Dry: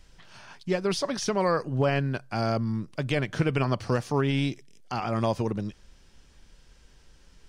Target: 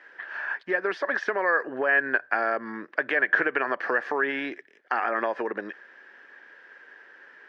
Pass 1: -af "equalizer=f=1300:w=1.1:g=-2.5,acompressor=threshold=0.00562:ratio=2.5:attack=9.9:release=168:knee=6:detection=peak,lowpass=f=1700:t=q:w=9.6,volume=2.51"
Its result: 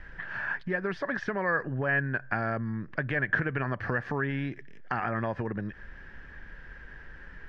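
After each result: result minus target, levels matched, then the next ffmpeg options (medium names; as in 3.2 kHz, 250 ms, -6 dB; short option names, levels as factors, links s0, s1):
250 Hz band +6.5 dB; compression: peak gain reduction +6 dB
-af "highpass=f=350:w=0.5412,highpass=f=350:w=1.3066,equalizer=f=1300:w=1.1:g=-2.5,acompressor=threshold=0.00562:ratio=2.5:attack=9.9:release=168:knee=6:detection=peak,lowpass=f=1700:t=q:w=9.6,volume=2.51"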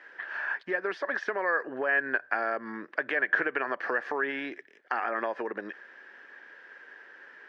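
compression: peak gain reduction +4 dB
-af "highpass=f=350:w=0.5412,highpass=f=350:w=1.3066,equalizer=f=1300:w=1.1:g=-2.5,acompressor=threshold=0.0126:ratio=2.5:attack=9.9:release=168:knee=6:detection=peak,lowpass=f=1700:t=q:w=9.6,volume=2.51"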